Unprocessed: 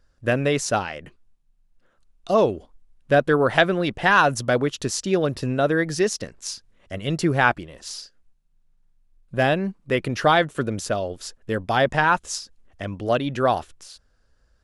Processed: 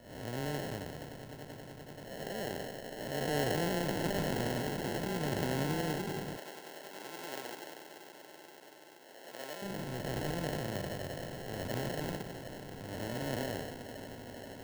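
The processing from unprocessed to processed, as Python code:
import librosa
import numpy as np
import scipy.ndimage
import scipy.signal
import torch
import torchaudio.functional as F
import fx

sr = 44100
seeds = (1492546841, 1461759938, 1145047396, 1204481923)

y = fx.spec_blur(x, sr, span_ms=488.0)
y = fx.echo_swell(y, sr, ms=96, loudest=8, wet_db=-15.5)
y = fx.dynamic_eq(y, sr, hz=1600.0, q=0.84, threshold_db=-40.0, ratio=4.0, max_db=-5)
y = fx.sample_hold(y, sr, seeds[0], rate_hz=1200.0, jitter_pct=0)
y = fx.highpass(y, sr, hz=450.0, slope=12, at=(6.36, 9.62))
y = fx.band_widen(y, sr, depth_pct=40)
y = F.gain(torch.from_numpy(y), -8.5).numpy()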